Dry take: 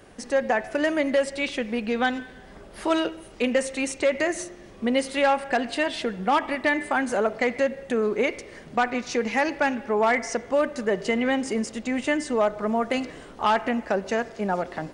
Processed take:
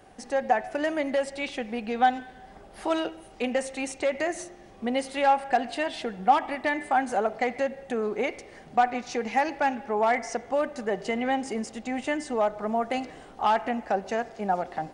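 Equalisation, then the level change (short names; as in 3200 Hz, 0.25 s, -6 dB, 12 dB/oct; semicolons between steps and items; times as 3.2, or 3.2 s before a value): bell 770 Hz +12 dB 0.25 oct; -5.0 dB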